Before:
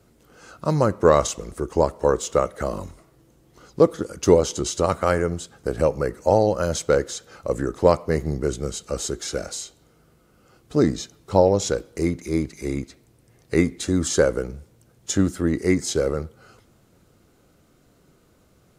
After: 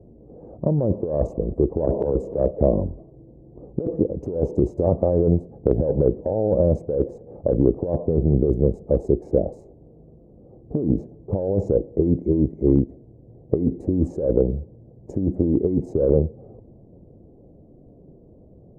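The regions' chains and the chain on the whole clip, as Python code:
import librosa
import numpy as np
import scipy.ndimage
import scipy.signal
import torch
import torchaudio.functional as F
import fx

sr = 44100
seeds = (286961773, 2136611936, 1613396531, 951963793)

y = fx.chain(x, sr, fx.doubler(ms=15.0, db=-8.5),
    fx.band_squash(depth_pct=100), at=(1.87, 2.51))
y = fx.wiener(y, sr, points=9)
y = scipy.signal.sosfilt(scipy.signal.cheby2(4, 40, 1300.0, 'lowpass', fs=sr, output='sos'), y)
y = fx.over_compress(y, sr, threshold_db=-25.0, ratio=-1.0)
y = F.gain(torch.from_numpy(y), 6.0).numpy()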